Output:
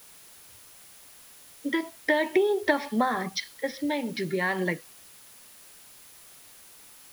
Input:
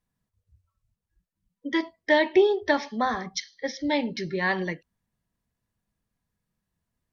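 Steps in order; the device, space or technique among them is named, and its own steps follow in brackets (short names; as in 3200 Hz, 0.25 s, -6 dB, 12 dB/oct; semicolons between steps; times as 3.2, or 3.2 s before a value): medium wave at night (BPF 150–3900 Hz; compressor, threshold -28 dBFS, peak gain reduction 13.5 dB; tremolo 0.38 Hz, depth 47%; whine 10000 Hz -64 dBFS; white noise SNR 21 dB); gain +8 dB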